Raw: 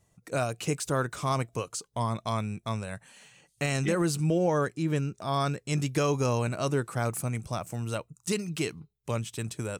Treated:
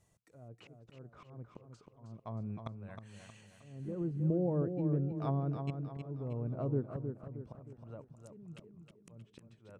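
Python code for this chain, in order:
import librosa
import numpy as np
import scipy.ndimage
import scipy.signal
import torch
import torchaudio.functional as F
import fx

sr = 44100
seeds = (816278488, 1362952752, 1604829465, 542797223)

p1 = fx.env_lowpass_down(x, sr, base_hz=420.0, full_db=-26.0)
p2 = fx.auto_swell(p1, sr, attack_ms=693.0)
p3 = p2 + fx.echo_feedback(p2, sr, ms=314, feedback_pct=45, wet_db=-7.0, dry=0)
y = F.gain(torch.from_numpy(p3), -4.0).numpy()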